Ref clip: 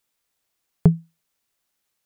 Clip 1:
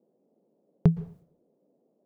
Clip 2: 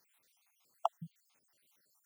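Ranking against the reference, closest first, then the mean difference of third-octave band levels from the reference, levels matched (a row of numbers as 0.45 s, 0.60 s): 1, 2; 3.0 dB, 12.0 dB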